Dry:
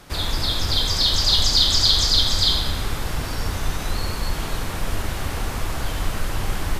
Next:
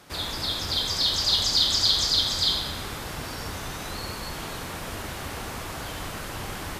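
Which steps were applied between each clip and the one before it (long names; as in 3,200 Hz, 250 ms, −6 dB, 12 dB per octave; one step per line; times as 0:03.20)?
high-pass filter 150 Hz 6 dB per octave
level −4 dB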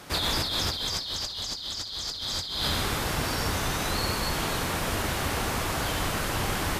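compressor whose output falls as the input rises −32 dBFS, ratio −1
level +2.5 dB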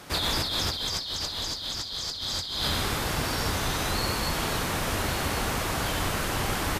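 single-tap delay 1,101 ms −11 dB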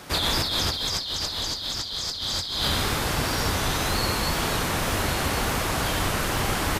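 tape wow and flutter 32 cents
level +3 dB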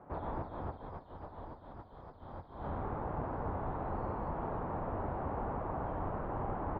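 transistor ladder low-pass 1,100 Hz, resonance 35%
level −4 dB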